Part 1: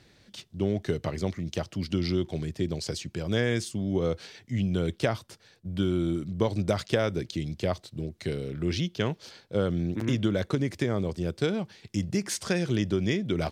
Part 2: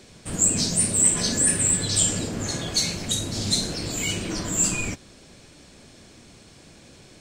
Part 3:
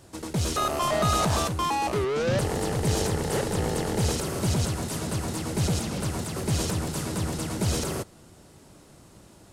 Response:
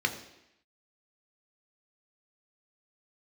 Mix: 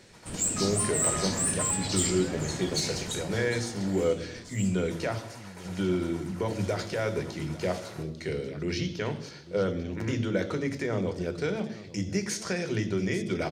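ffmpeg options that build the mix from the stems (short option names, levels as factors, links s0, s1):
-filter_complex "[0:a]equalizer=f=6000:w=0.64:g=7,alimiter=limit=0.158:level=0:latency=1:release=90,volume=0.631,asplit=3[s0][s1][s2];[s1]volume=0.473[s3];[s2]volume=0.178[s4];[1:a]asoftclip=type=tanh:threshold=0.282,volume=0.447,afade=t=out:st=2.95:d=0.57:silence=0.237137[s5];[2:a]highpass=740,volume=0.178,asplit=3[s6][s7][s8];[s6]atrim=end=4.04,asetpts=PTS-STARTPTS,afade=t=out:st=4.036:d=0.004:c=hsin[s9];[s7]atrim=start=4.04:end=4.9,asetpts=PTS-STARTPTS,volume=0[s10];[s8]atrim=start=4.9,asetpts=PTS-STARTPTS,afade=t=in:d=0.004:c=hsin[s11];[s9][s10][s11]concat=n=3:v=0:a=1,asplit=2[s12][s13];[s13]volume=0.562[s14];[3:a]atrim=start_sample=2205[s15];[s3][s14]amix=inputs=2:normalize=0[s16];[s16][s15]afir=irnorm=-1:irlink=0[s17];[s4]aecho=0:1:847:1[s18];[s0][s5][s12][s17][s18]amix=inputs=5:normalize=0"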